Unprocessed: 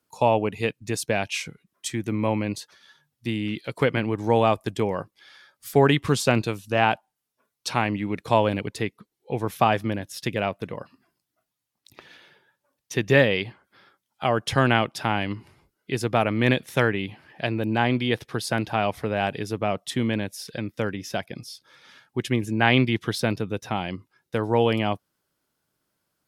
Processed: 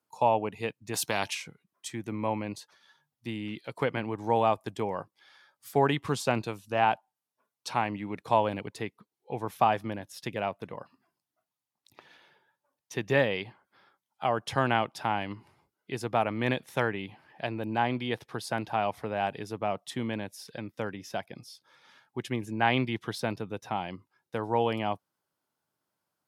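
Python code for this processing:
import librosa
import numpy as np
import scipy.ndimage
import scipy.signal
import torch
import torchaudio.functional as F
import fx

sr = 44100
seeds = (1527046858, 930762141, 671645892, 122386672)

y = fx.spectral_comp(x, sr, ratio=2.0, at=(0.93, 1.33), fade=0.02)
y = scipy.signal.sosfilt(scipy.signal.butter(2, 85.0, 'highpass', fs=sr, output='sos'), y)
y = fx.peak_eq(y, sr, hz=870.0, db=7.0, octaves=0.93)
y = F.gain(torch.from_numpy(y), -8.5).numpy()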